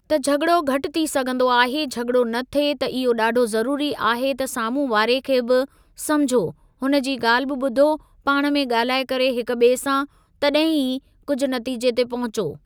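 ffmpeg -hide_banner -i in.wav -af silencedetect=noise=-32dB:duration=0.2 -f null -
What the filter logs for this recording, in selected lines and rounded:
silence_start: 5.65
silence_end: 5.99 | silence_duration: 0.34
silence_start: 6.51
silence_end: 6.82 | silence_duration: 0.31
silence_start: 7.96
silence_end: 8.27 | silence_duration: 0.31
silence_start: 10.05
silence_end: 10.42 | silence_duration: 0.37
silence_start: 10.98
silence_end: 11.28 | silence_duration: 0.30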